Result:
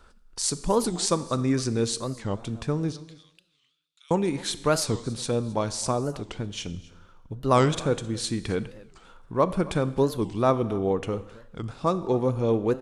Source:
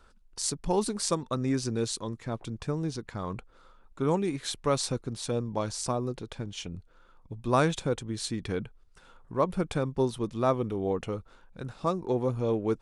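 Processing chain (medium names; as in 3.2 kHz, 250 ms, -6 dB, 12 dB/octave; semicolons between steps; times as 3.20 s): 2.92–4.11 s: ladder high-pass 2.8 kHz, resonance 45%; on a send: delay 264 ms -21 dB; on the sum: Schroeder reverb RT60 1 s, combs from 27 ms, DRR 14.5 dB; warped record 45 rpm, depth 250 cents; trim +4 dB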